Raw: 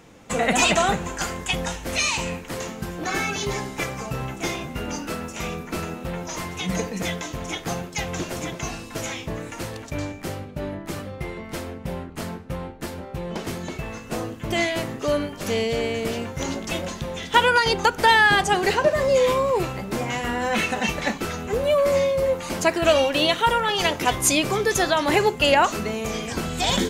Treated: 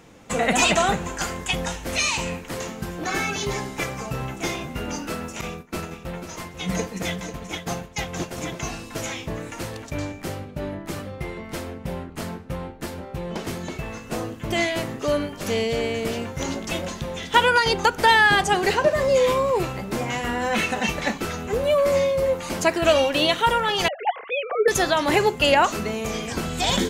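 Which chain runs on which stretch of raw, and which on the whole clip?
5.41–8.38 expander -27 dBFS + echo 0.492 s -10 dB
23.88–24.68 sine-wave speech + air absorption 470 m
whole clip: dry

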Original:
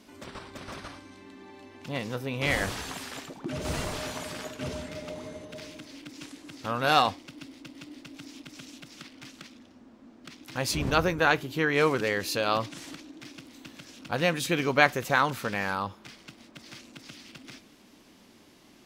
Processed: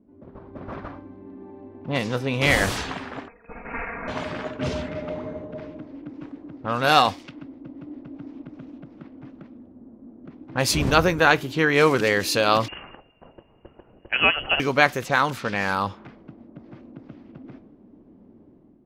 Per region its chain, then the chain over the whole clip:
3.28–4.08 HPF 1200 Hz 6 dB/oct + comb 4.3 ms, depth 81% + inverted band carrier 2800 Hz
12.68–14.6 bell 83 Hz -13.5 dB 1.2 oct + inverted band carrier 3100 Hz
whole clip: AGC gain up to 8 dB; low-pass opened by the level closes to 360 Hz, open at -19.5 dBFS

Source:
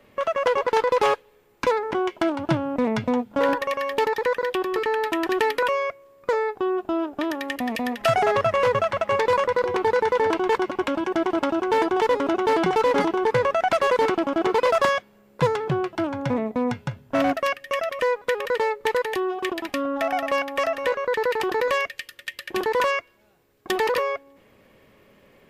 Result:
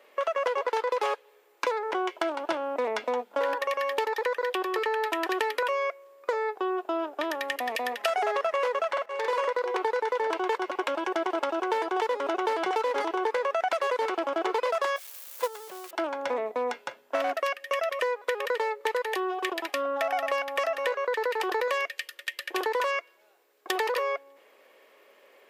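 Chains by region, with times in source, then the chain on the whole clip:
8.91–9.52 auto swell 0.49 s + doubler 49 ms -3 dB
14.96–15.91 switching spikes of -18 dBFS + gate -18 dBFS, range -14 dB + HPF 130 Hz
whole clip: HPF 410 Hz 24 dB/oct; compressor, threshold -24 dBFS

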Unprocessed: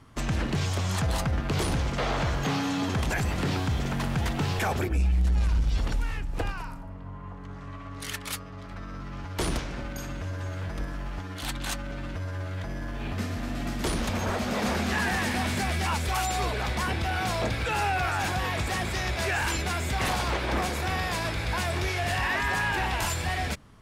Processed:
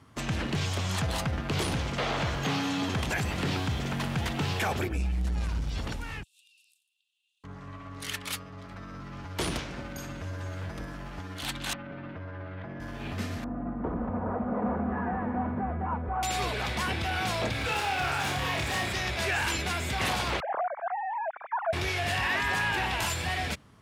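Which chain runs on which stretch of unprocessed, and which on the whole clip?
6.23–7.44 rippled Chebyshev high-pass 2600 Hz, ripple 9 dB + compressor 4:1, threshold -58 dBFS
11.73–12.8 BPF 110–2700 Hz + air absorption 170 m
13.44–16.23 LPF 1200 Hz 24 dB/oct + comb 4.1 ms, depth 37%
17.52–18.93 hard clip -26.5 dBFS + flutter echo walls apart 4.9 m, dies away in 0.37 s
20.4–21.73 sine-wave speech + LPF 1300 Hz 24 dB/oct
whole clip: HPF 69 Hz; dynamic EQ 3000 Hz, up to +4 dB, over -43 dBFS, Q 1.2; gain -2 dB

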